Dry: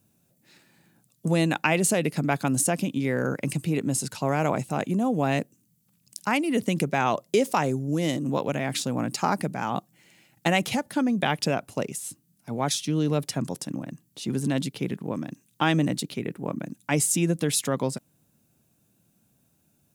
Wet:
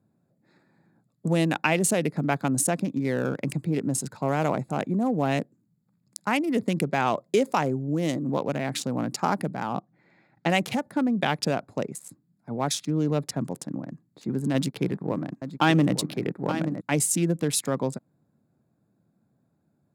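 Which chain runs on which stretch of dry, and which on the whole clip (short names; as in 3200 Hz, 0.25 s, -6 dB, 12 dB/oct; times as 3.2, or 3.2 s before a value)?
9.63–10.5 air absorption 190 m + mismatched tape noise reduction encoder only
14.54–16.81 notch 230 Hz, Q 6.6 + sample leveller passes 1 + echo 0.875 s -10 dB
whole clip: Wiener smoothing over 15 samples; HPF 94 Hz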